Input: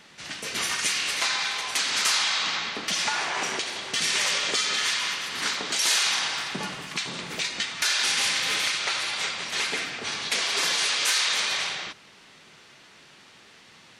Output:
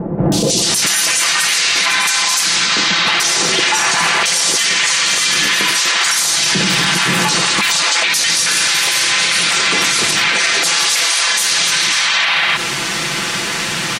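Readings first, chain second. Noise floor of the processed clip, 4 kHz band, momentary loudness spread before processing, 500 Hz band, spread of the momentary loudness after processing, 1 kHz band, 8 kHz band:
-20 dBFS, +12.0 dB, 9 LU, +14.0 dB, 2 LU, +13.0 dB, +14.5 dB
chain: gain riding 0.5 s; treble shelf 6 kHz +7 dB; comb 5.9 ms, depth 54%; three bands offset in time lows, highs, mids 320/640 ms, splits 620/3700 Hz; loudness maximiser +33.5 dB; trim -4.5 dB

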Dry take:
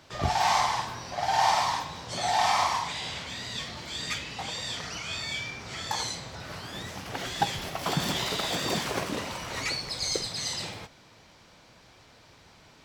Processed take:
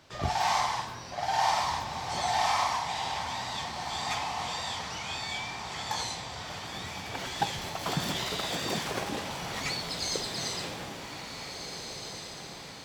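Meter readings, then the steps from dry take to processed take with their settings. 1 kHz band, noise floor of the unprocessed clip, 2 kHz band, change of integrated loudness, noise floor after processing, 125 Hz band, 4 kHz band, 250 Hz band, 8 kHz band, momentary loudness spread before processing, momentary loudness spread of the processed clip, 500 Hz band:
-2.0 dB, -56 dBFS, -2.0 dB, -2.5 dB, -43 dBFS, -2.0 dB, -2.0 dB, -2.0 dB, -2.0 dB, 12 LU, 11 LU, -2.0 dB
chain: echo that smears into a reverb 1733 ms, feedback 50%, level -6.5 dB; trim -3 dB

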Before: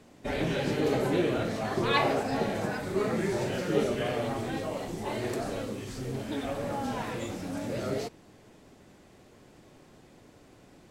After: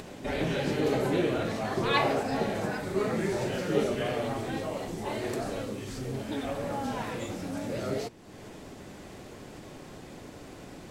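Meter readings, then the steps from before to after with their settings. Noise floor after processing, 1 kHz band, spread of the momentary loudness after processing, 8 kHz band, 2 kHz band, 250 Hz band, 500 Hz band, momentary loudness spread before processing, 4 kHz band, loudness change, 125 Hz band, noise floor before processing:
-47 dBFS, 0.0 dB, 19 LU, +0.5 dB, 0.0 dB, 0.0 dB, 0.0 dB, 9 LU, 0.0 dB, 0.0 dB, 0.0 dB, -56 dBFS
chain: upward compressor, threshold -34 dBFS; de-hum 116.7 Hz, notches 3; reverse echo 457 ms -20.5 dB

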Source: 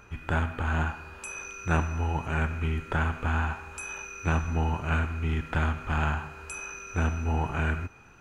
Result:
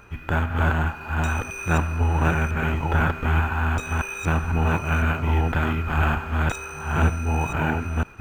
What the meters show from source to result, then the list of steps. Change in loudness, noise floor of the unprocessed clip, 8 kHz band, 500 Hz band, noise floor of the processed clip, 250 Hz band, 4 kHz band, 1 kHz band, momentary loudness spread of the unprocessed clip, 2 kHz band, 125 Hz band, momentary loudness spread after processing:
+6.5 dB, -52 dBFS, +3.0 dB, +6.5 dB, -38 dBFS, +6.5 dB, +6.0 dB, +6.5 dB, 9 LU, +6.0 dB, +6.5 dB, 4 LU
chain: chunks repeated in reverse 502 ms, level -0.5 dB; decimation joined by straight lines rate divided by 3×; trim +4 dB

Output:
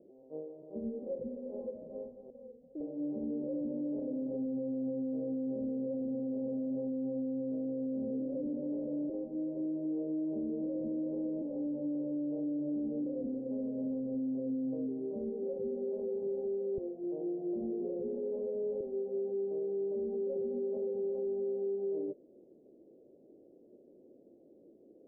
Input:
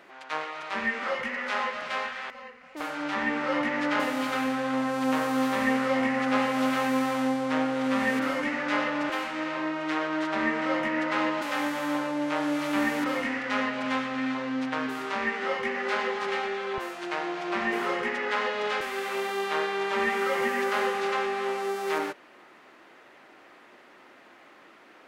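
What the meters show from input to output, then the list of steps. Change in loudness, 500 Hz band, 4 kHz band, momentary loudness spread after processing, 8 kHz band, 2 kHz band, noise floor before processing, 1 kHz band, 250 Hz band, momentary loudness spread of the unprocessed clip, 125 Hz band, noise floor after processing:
-8.5 dB, -5.0 dB, under -40 dB, 6 LU, under -35 dB, under -40 dB, -54 dBFS, under -30 dB, -5.0 dB, 6 LU, -5.5 dB, -60 dBFS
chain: steep low-pass 520 Hz 48 dB/octave; bass shelf 390 Hz -5 dB; peak limiter -32.5 dBFS, peak gain reduction 10 dB; trim +3 dB

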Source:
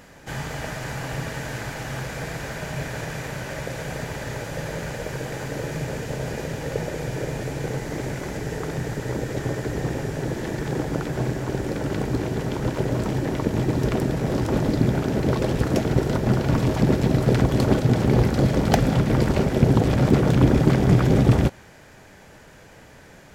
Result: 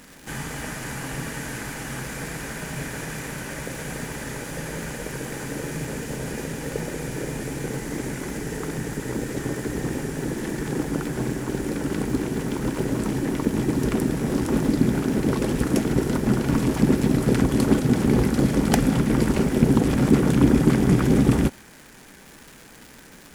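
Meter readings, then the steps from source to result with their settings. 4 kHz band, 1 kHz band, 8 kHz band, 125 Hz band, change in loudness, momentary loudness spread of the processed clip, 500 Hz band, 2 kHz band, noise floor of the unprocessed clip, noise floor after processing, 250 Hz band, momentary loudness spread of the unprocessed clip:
-1.0 dB, -2.5 dB, +4.5 dB, -3.5 dB, -0.5 dB, 13 LU, -2.0 dB, -0.5 dB, -48 dBFS, -47 dBFS, +2.0 dB, 13 LU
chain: fifteen-band graphic EQ 100 Hz -10 dB, 250 Hz +5 dB, 630 Hz -7 dB, 4 kHz -3 dB, 10 kHz +10 dB; crackle 410 per s -35 dBFS

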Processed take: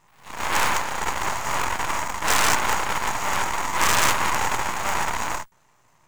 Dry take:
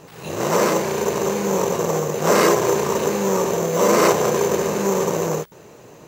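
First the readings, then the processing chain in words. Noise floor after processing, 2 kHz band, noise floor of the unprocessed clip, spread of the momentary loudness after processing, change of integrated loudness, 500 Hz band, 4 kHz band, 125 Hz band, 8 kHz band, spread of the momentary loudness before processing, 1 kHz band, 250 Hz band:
-60 dBFS, +4.0 dB, -45 dBFS, 8 LU, -4.0 dB, -16.0 dB, +2.5 dB, -9.5 dB, -1.0 dB, 7 LU, 0.0 dB, -14.0 dB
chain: Chebyshev shaper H 3 -15 dB, 6 -18 dB, 7 -18 dB, 8 -7 dB, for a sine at -2 dBFS; graphic EQ 125/250/500/1000/2000/8000 Hz +4/-4/-9/+11/+4/+7 dB; half-wave rectifier; trim -6.5 dB

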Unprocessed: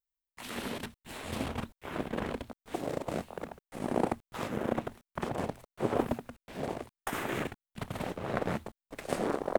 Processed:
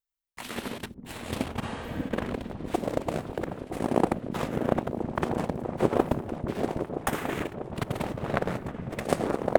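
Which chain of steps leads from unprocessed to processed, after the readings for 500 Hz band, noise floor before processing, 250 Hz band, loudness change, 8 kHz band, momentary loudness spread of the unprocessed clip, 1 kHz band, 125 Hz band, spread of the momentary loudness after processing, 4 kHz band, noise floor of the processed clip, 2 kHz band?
+6.0 dB, under -85 dBFS, +6.0 dB, +5.5 dB, +3.5 dB, 11 LU, +5.0 dB, +7.0 dB, 9 LU, +3.0 dB, -48 dBFS, +3.5 dB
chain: transient shaper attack +8 dB, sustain -3 dB; delay with an opening low-pass 323 ms, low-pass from 200 Hz, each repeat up 1 oct, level -3 dB; spectral replace 1.66–2.06 s, 330–11000 Hz both

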